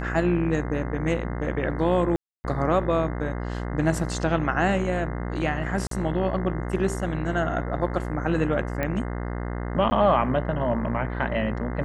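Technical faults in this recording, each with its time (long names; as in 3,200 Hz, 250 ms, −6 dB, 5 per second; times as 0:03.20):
mains buzz 60 Hz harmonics 35 −30 dBFS
0:02.16–0:02.44: drop-out 280 ms
0:05.87–0:05.91: drop-out 43 ms
0:08.83: click −14 dBFS
0:09.90–0:09.91: drop-out 10 ms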